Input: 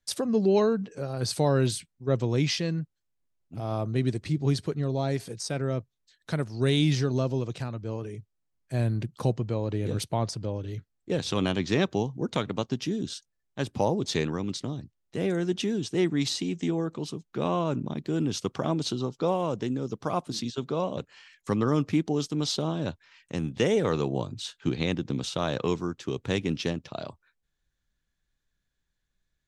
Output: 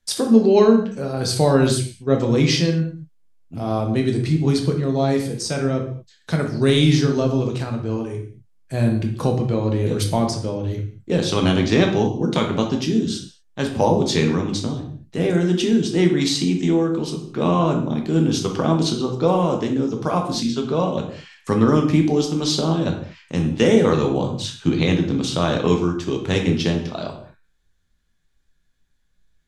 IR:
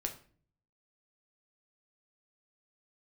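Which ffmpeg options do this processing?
-filter_complex "[1:a]atrim=start_sample=2205,atrim=end_sample=6174,asetrate=25137,aresample=44100[link_01];[0:a][link_01]afir=irnorm=-1:irlink=0,volume=4.5dB"

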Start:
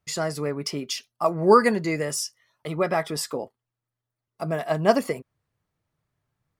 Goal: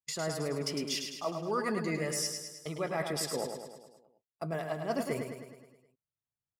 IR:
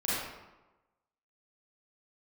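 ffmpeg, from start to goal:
-af "agate=range=-26dB:threshold=-40dB:ratio=16:detection=peak,areverse,acompressor=threshold=-34dB:ratio=5,areverse,aecho=1:1:105|210|315|420|525|630|735:0.501|0.286|0.163|0.0928|0.0529|0.0302|0.0172,volume=1.5dB"

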